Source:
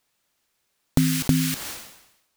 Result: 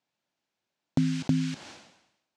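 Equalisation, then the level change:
loudspeaker in its box 130–7,000 Hz, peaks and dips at 440 Hz −6 dB, 1,200 Hz −7 dB, 1,900 Hz −4 dB
high-shelf EQ 2,600 Hz −10.5 dB
−3.5 dB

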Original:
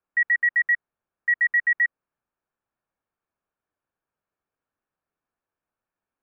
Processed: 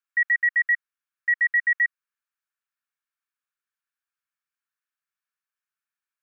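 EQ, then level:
high-pass filter 1,400 Hz 24 dB per octave
0.0 dB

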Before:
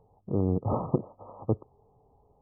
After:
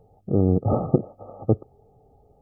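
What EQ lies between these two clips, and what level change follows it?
Butterworth band-reject 1,000 Hz, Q 2.8
+7.0 dB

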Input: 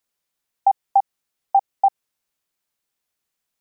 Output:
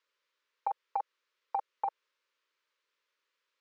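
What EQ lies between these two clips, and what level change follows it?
high-pass filter 440 Hz 24 dB per octave
Butterworth band-reject 740 Hz, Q 1.9
high-frequency loss of the air 200 metres
+6.5 dB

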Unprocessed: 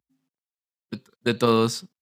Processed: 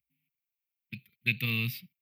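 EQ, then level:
drawn EQ curve 150 Hz 0 dB, 380 Hz −23 dB, 650 Hz −30 dB, 980 Hz −25 dB, 1,500 Hz −21 dB, 2,300 Hz +14 dB, 3,500 Hz −2 dB, 7,500 Hz −25 dB, 13,000 Hz +12 dB
−3.0 dB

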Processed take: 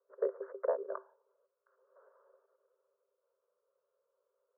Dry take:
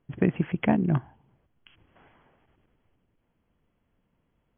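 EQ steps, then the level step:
Chebyshev high-pass with heavy ripple 380 Hz, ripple 9 dB
Bessel low-pass filter 680 Hz, order 8
phaser with its sweep stopped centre 520 Hz, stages 8
+9.0 dB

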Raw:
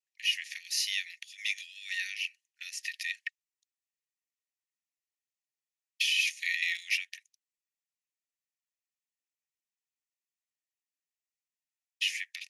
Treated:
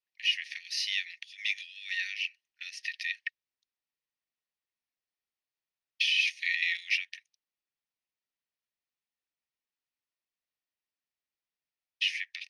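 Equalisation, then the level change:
Savitzky-Golay smoothing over 15 samples
+1.5 dB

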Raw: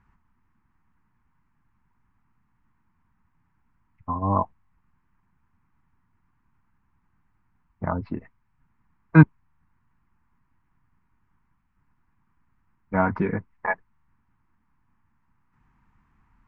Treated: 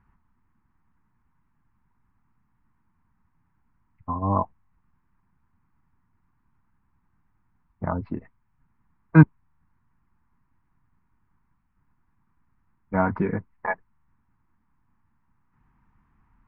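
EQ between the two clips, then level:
low-pass filter 1,900 Hz 6 dB per octave
0.0 dB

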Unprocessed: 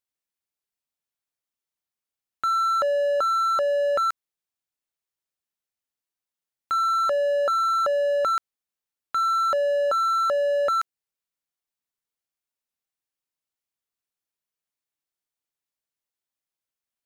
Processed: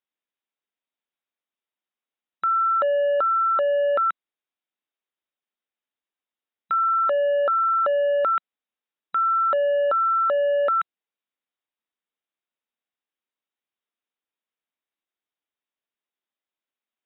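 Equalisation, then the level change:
linear-phase brick-wall band-pass 180–3,900 Hz
+1.5 dB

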